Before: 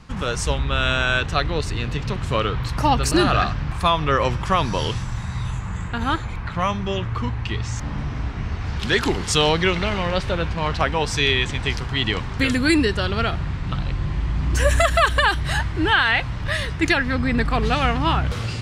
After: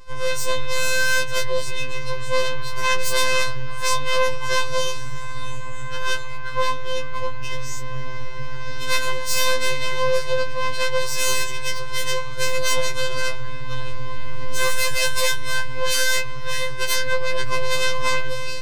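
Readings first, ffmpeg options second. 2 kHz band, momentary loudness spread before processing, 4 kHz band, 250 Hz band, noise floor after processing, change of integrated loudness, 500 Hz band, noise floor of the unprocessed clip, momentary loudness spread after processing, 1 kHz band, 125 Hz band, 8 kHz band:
-1.0 dB, 10 LU, -0.5 dB, -18.5 dB, -21 dBFS, -2.5 dB, -0.5 dB, -29 dBFS, 12 LU, -4.0 dB, -11.5 dB, +6.5 dB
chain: -af "aeval=exprs='max(val(0),0)':c=same,aeval=exprs='0.531*(cos(1*acos(clip(val(0)/0.531,-1,1)))-cos(1*PI/2))+0.00596*(cos(6*acos(clip(val(0)/0.531,-1,1)))-cos(6*PI/2))+0.266*(cos(7*acos(clip(val(0)/0.531,-1,1)))-cos(7*PI/2))+0.211*(cos(8*acos(clip(val(0)/0.531,-1,1)))-cos(8*PI/2))':c=same,afftfilt=real='hypot(re,im)*cos(PI*b)':imag='0':win_size=1024:overlap=0.75,afftfilt=real='re*2.45*eq(mod(b,6),0)':imag='im*2.45*eq(mod(b,6),0)':win_size=2048:overlap=0.75,volume=0.75"

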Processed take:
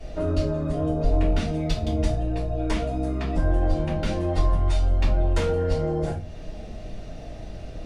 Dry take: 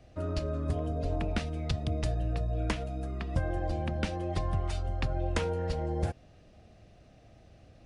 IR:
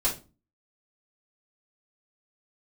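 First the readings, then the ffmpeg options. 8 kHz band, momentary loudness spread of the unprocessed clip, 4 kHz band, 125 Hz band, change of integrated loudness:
+5.0 dB, 3 LU, +5.0 dB, +6.5 dB, +7.5 dB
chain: -filter_complex "[0:a]acompressor=threshold=0.00794:ratio=2.5,asoftclip=type=tanh:threshold=0.0211[s0];[1:a]atrim=start_sample=2205,asetrate=37485,aresample=44100[s1];[s0][s1]afir=irnorm=-1:irlink=0,volume=2.11"

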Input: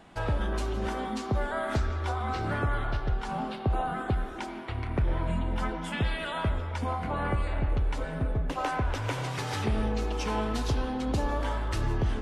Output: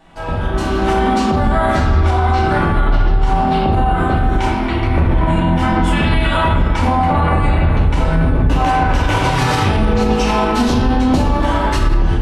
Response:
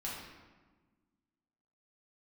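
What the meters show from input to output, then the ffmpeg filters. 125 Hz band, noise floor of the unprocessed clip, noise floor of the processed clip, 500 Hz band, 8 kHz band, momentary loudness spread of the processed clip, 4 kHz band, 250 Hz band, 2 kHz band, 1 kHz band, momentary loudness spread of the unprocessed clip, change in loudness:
+15.0 dB, -37 dBFS, -18 dBFS, +14.5 dB, +12.5 dB, 2 LU, +14.5 dB, +17.0 dB, +14.5 dB, +17.0 dB, 3 LU, +15.5 dB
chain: -filter_complex "[1:a]atrim=start_sample=2205[s0];[0:a][s0]afir=irnorm=-1:irlink=0,dynaudnorm=f=480:g=3:m=3.76,alimiter=limit=0.251:level=0:latency=1:release=81,volume=2.11"

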